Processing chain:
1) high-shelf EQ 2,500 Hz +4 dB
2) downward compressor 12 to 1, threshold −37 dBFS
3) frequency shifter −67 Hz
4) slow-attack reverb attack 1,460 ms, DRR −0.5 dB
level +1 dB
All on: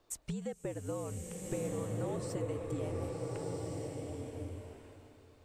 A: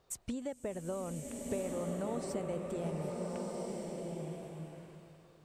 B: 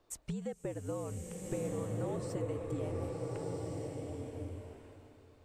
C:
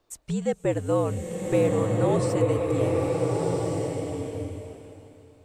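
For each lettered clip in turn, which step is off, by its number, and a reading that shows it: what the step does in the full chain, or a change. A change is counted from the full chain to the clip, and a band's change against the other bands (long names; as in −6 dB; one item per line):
3, 125 Hz band −4.0 dB
1, 8 kHz band −2.5 dB
2, 8 kHz band −7.5 dB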